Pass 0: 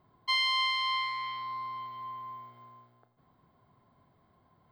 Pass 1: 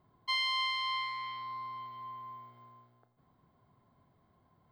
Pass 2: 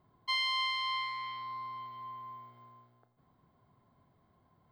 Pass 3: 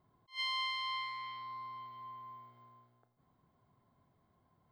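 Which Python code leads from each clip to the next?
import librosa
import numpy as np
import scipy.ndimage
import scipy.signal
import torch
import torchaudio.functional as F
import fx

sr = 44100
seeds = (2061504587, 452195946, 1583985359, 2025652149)

y1 = fx.low_shelf(x, sr, hz=350.0, db=3.0)
y1 = F.gain(torch.from_numpy(y1), -4.0).numpy()
y2 = y1
y3 = fx.attack_slew(y2, sr, db_per_s=280.0)
y3 = F.gain(torch.from_numpy(y3), -4.0).numpy()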